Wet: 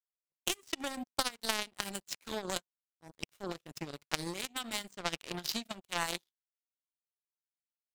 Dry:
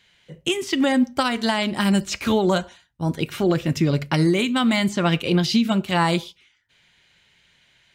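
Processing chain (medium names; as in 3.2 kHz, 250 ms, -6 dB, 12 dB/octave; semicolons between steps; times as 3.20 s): tone controls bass -5 dB, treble +9 dB; power-law waveshaper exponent 3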